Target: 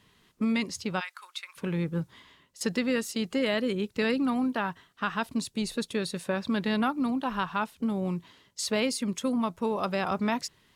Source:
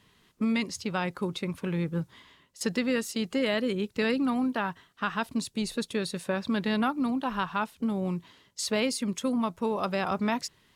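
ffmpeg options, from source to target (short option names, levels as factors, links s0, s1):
-filter_complex "[0:a]asplit=3[s0][s1][s2];[s0]afade=t=out:st=0.99:d=0.02[s3];[s1]highpass=f=1200:w=0.5412,highpass=f=1200:w=1.3066,afade=t=in:st=0.99:d=0.02,afade=t=out:st=1.56:d=0.02[s4];[s2]afade=t=in:st=1.56:d=0.02[s5];[s3][s4][s5]amix=inputs=3:normalize=0"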